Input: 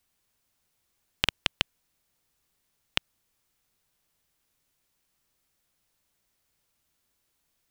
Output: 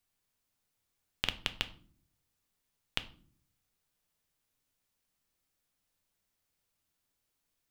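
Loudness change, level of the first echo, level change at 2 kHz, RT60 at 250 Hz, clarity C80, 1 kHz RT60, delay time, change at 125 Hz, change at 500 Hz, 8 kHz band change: −6.5 dB, no echo audible, −6.5 dB, 0.85 s, 20.5 dB, 0.40 s, no echo audible, −5.5 dB, −6.5 dB, −6.5 dB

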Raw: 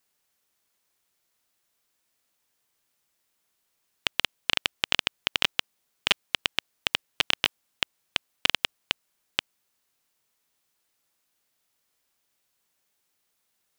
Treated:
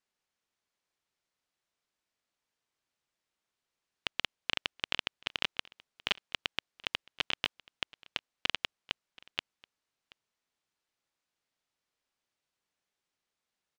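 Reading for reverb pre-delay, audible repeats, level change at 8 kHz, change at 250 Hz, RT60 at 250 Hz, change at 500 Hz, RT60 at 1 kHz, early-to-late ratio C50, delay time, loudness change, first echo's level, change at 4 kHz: no reverb audible, 1, −13.0 dB, −7.0 dB, no reverb audible, −7.0 dB, no reverb audible, no reverb audible, 729 ms, −8.5 dB, −24.0 dB, −8.5 dB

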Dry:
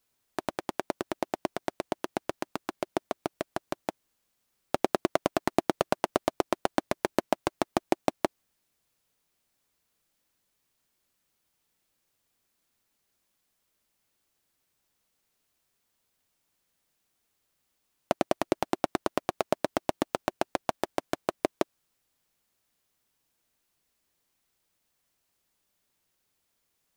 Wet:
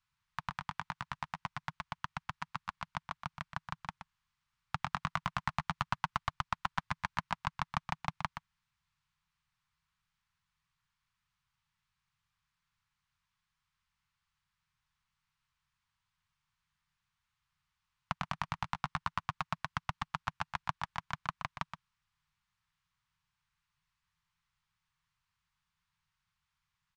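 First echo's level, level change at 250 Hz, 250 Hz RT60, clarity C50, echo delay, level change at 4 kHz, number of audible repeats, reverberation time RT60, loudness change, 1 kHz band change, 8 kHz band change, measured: −9.0 dB, −15.5 dB, no reverb audible, no reverb audible, 123 ms, −5.0 dB, 1, no reverb audible, −7.5 dB, −4.5 dB, −12.5 dB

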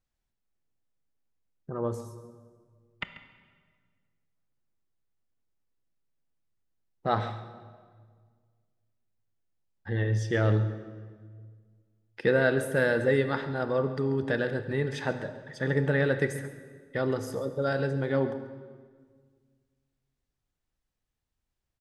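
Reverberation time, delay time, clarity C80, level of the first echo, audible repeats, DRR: 1.8 s, 138 ms, 11.0 dB, −15.5 dB, 1, 9.0 dB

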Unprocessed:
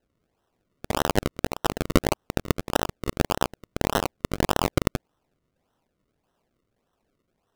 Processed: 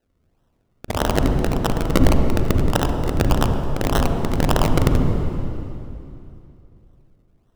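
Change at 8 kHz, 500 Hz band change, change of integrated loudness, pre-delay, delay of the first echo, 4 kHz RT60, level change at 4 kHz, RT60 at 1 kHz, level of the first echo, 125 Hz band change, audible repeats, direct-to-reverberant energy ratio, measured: +1.5 dB, +4.5 dB, +6.0 dB, 36 ms, no echo audible, 2.6 s, +2.0 dB, 2.7 s, no echo audible, +11.0 dB, no echo audible, 4.0 dB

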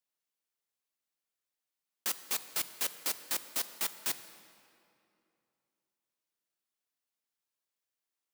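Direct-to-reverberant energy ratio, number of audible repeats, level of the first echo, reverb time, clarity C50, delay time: 11.5 dB, no echo audible, no echo audible, 2.7 s, 12.5 dB, no echo audible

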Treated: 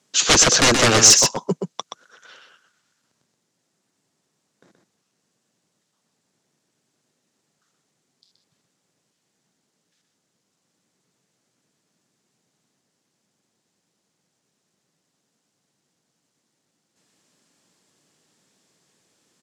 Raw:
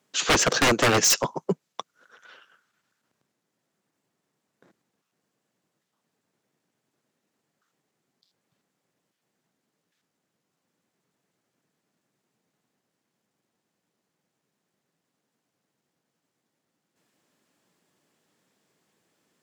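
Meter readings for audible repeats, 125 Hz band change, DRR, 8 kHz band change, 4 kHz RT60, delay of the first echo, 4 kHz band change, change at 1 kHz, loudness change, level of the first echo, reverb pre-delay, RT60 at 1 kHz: 1, +5.5 dB, no reverb audible, +11.0 dB, no reverb audible, 125 ms, +9.0 dB, +3.5 dB, +7.5 dB, −6.0 dB, no reverb audible, no reverb audible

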